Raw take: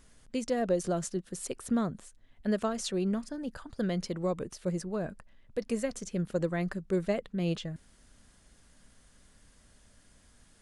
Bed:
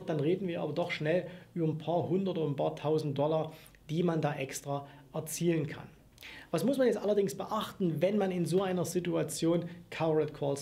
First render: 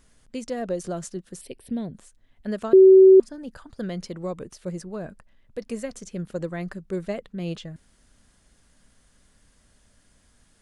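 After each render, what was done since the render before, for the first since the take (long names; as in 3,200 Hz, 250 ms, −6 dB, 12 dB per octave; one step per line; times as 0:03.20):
0:01.41–0:01.94: phaser with its sweep stopped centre 3,000 Hz, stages 4
0:02.73–0:03.20: beep over 380 Hz −7.5 dBFS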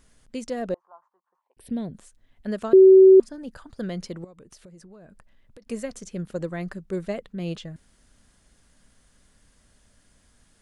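0:00.74–0:01.57: flat-topped band-pass 980 Hz, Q 3.8
0:04.24–0:05.67: downward compressor 12 to 1, threshold −44 dBFS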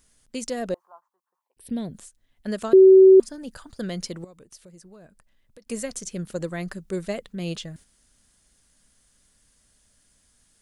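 noise gate −48 dBFS, range −7 dB
high-shelf EQ 3,700 Hz +11.5 dB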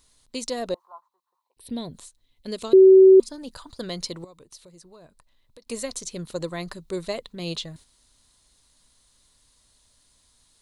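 thirty-one-band graphic EQ 200 Hz −8 dB, 1,000 Hz +8 dB, 1,600 Hz −5 dB, 4,000 Hz +11 dB
0:02.21–0:03.30: gain on a spectral selection 540–2,000 Hz −7 dB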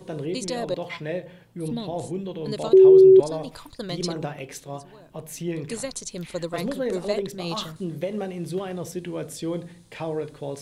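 mix in bed 0 dB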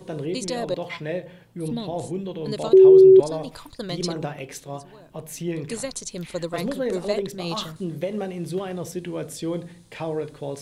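level +1 dB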